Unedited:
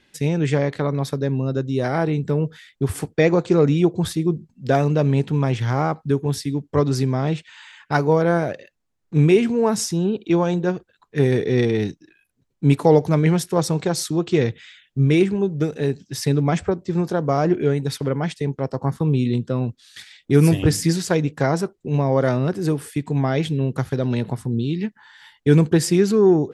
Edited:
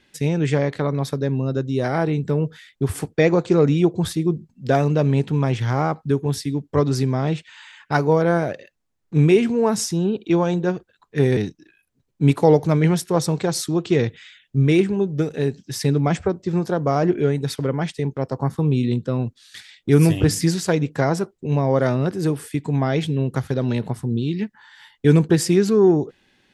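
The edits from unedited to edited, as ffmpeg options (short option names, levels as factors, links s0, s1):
-filter_complex "[0:a]asplit=2[s0][s1];[s0]atrim=end=11.372[s2];[s1]atrim=start=11.788[s3];[s2][s3]acrossfade=d=0.004:c1=hsin:c2=hsin"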